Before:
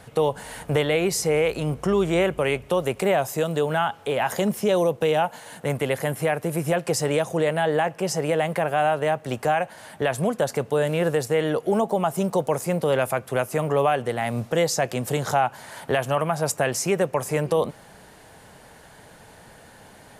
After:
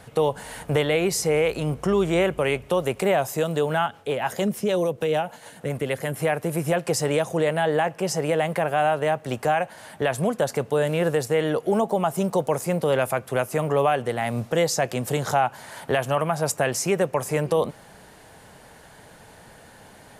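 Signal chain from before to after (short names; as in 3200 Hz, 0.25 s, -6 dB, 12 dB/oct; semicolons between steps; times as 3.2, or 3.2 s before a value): 3.86–6.14 rotary speaker horn 6.7 Hz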